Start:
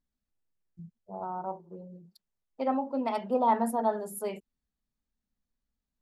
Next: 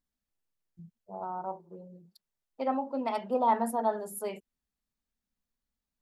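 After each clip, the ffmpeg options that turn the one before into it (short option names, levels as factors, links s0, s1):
-af "lowshelf=f=320:g=-4.5"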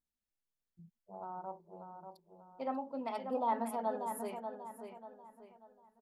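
-filter_complex "[0:a]asplit=2[s0][s1];[s1]adelay=589,lowpass=f=4300:p=1,volume=0.447,asplit=2[s2][s3];[s3]adelay=589,lowpass=f=4300:p=1,volume=0.37,asplit=2[s4][s5];[s5]adelay=589,lowpass=f=4300:p=1,volume=0.37,asplit=2[s6][s7];[s7]adelay=589,lowpass=f=4300:p=1,volume=0.37[s8];[s0][s2][s4][s6][s8]amix=inputs=5:normalize=0,volume=0.422"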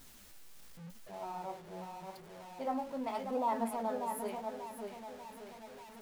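-af "aeval=exprs='val(0)+0.5*0.00422*sgn(val(0))':c=same,flanger=delay=7.3:depth=9.3:regen=46:speed=0.86:shape=sinusoidal,volume=1.58"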